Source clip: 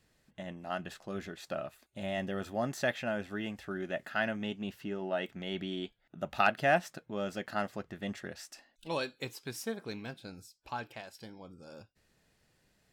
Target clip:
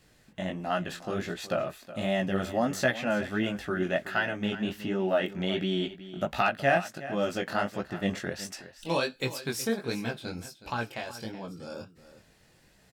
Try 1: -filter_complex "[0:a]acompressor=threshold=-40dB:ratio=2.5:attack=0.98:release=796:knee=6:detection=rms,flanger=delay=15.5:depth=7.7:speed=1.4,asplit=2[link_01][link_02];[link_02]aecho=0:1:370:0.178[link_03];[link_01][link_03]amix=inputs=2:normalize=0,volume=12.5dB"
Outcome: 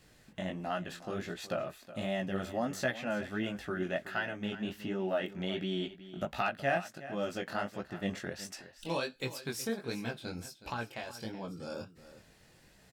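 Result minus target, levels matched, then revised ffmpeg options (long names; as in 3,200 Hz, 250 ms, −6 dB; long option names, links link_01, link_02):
downward compressor: peak gain reduction +6.5 dB
-filter_complex "[0:a]acompressor=threshold=-29dB:ratio=2.5:attack=0.98:release=796:knee=6:detection=rms,flanger=delay=15.5:depth=7.7:speed=1.4,asplit=2[link_01][link_02];[link_02]aecho=0:1:370:0.178[link_03];[link_01][link_03]amix=inputs=2:normalize=0,volume=12.5dB"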